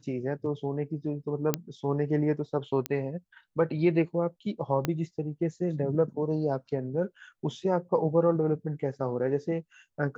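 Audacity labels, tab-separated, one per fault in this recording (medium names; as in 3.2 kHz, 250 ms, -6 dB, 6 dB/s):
1.540000	1.540000	pop -9 dBFS
2.860000	2.860000	pop -13 dBFS
4.850000	4.850000	pop -13 dBFS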